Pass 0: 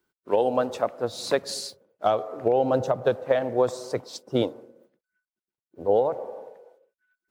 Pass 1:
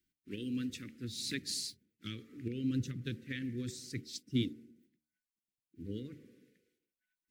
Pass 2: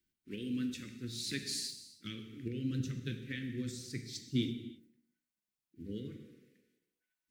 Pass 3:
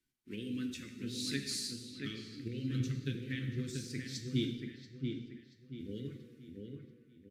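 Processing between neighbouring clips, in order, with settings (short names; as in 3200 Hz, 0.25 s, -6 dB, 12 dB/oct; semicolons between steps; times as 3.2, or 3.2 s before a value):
Chebyshev band-stop 290–2000 Hz, order 3; low shelf 79 Hz +7.5 dB; de-hum 75.6 Hz, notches 12; gain -4 dB
non-linear reverb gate 0.36 s falling, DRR 5.5 dB; gain -1 dB
flange 0.33 Hz, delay 7.1 ms, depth 8 ms, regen +49%; downsampling 32000 Hz; dark delay 0.683 s, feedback 35%, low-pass 2600 Hz, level -4.5 dB; gain +4 dB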